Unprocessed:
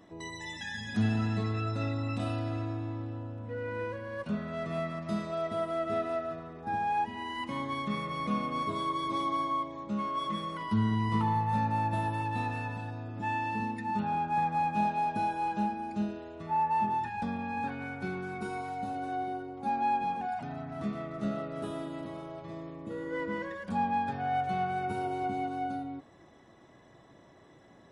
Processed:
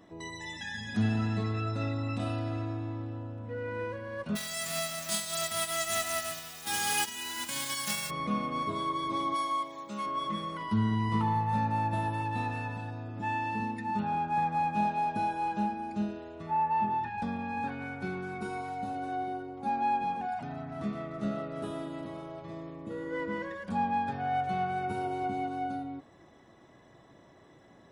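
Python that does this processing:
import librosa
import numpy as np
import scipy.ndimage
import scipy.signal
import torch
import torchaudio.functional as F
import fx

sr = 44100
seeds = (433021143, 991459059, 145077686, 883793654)

y = fx.envelope_flatten(x, sr, power=0.1, at=(4.35, 8.09), fade=0.02)
y = fx.riaa(y, sr, side='recording', at=(9.34, 10.05), fade=0.02)
y = fx.lowpass(y, sr, hz=4100.0, slope=12, at=(16.51, 17.18))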